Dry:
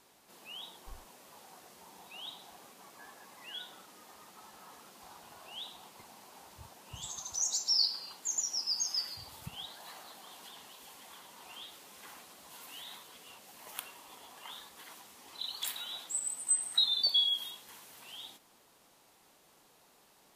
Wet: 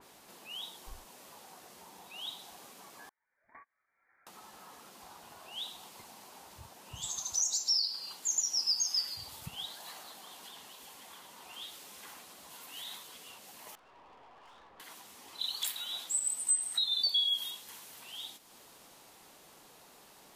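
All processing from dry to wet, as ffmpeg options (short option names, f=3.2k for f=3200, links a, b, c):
-filter_complex "[0:a]asettb=1/sr,asplit=3[a][b][c];[a]atrim=end=3.094[d];[b]atrim=start=3.09:end=4.27,asetpts=PTS-STARTPTS,afade=t=in:d=0.004:c=qsin,afade=t=out:st=1.176:d=0.004:c=qsin,highpass=f=390:p=1,agate=range=-35dB:threshold=-44dB:ratio=16:release=100:detection=peak,lowpass=f=2.2k:t=q:w=0.5098,lowpass=f=2.2k:t=q:w=0.6013,lowpass=f=2.2k:t=q:w=0.9,lowpass=f=2.2k:t=q:w=2.563,afreqshift=-2600[e];[c]atrim=start=4.266[f];[d][e]acrossfade=d=0.004:c1=hsin:c2=qsin[g];[g][f]acrossfade=d=0.004:c1=qsin:c2=hsin,asettb=1/sr,asplit=3[h][i][j];[h]atrim=end=13.754[k];[i]atrim=start=13.75:end=14.8,asetpts=PTS-STARTPTS,afade=t=in:d=0.004:c=qsin,afade=t=out:st=1.046:d=0.004:c=qsin,lowpass=1.2k,equalizer=f=200:t=o:w=1.6:g=-6.5,aeval=exprs='(tanh(1120*val(0)+0.35)-tanh(0.35))/1120':c=same[l];[j]atrim=start=14.796[m];[k][l]acrossfade=d=0.004:c1=hsin:c2=qsin[n];[n][m]acrossfade=d=0.004:c1=qsin:c2=hsin,alimiter=level_in=1.5dB:limit=-24dB:level=0:latency=1:release=310,volume=-1.5dB,acompressor=mode=upward:threshold=-49dB:ratio=2.5,adynamicequalizer=threshold=0.00282:dfrequency=2600:dqfactor=0.7:tfrequency=2600:tqfactor=0.7:attack=5:release=100:ratio=0.375:range=2.5:mode=boostabove:tftype=highshelf"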